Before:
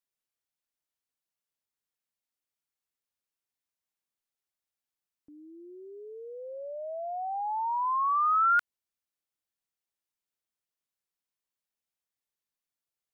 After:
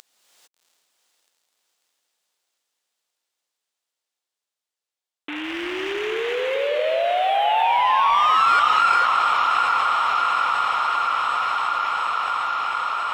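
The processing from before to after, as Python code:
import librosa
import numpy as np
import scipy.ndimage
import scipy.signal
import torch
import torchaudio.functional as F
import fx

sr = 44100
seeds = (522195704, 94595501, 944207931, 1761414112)

y = fx.cvsd(x, sr, bps=16000)
y = scipy.signal.sosfilt(scipy.signal.butter(2, 640.0, 'highpass', fs=sr, output='sos'), y)
y = fx.high_shelf(y, sr, hz=2300.0, db=10.0)
y = fx.leveller(y, sr, passes=1)
y = fx.echo_diffused(y, sr, ms=736, feedback_pct=63, wet_db=-9.0)
y = fx.rev_gated(y, sr, seeds[0], gate_ms=480, shape='rising', drr_db=0.0)
y = fx.env_flatten(y, sr, amount_pct=70)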